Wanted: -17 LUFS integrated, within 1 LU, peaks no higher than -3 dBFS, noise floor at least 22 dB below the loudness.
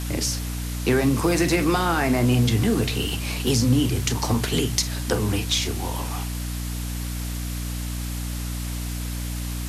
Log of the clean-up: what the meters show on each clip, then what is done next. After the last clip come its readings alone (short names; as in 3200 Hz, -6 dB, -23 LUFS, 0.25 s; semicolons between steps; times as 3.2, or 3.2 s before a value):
hum 60 Hz; harmonics up to 300 Hz; hum level -27 dBFS; noise floor -29 dBFS; noise floor target -46 dBFS; loudness -24.0 LUFS; peak -6.5 dBFS; loudness target -17.0 LUFS
-> de-hum 60 Hz, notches 5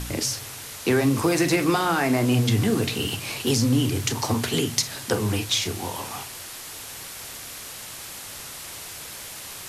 hum none; noise floor -38 dBFS; noise floor target -46 dBFS
-> denoiser 8 dB, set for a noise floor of -38 dBFS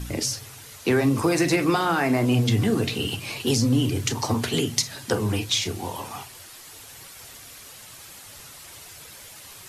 noise floor -44 dBFS; noise floor target -46 dBFS
-> denoiser 6 dB, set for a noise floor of -44 dBFS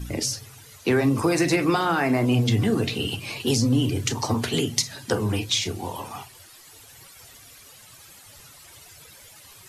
noise floor -49 dBFS; loudness -23.5 LUFS; peak -7.5 dBFS; loudness target -17.0 LUFS
-> gain +6.5 dB; limiter -3 dBFS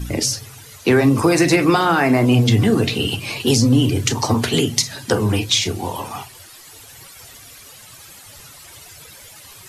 loudness -17.0 LUFS; peak -3.0 dBFS; noise floor -42 dBFS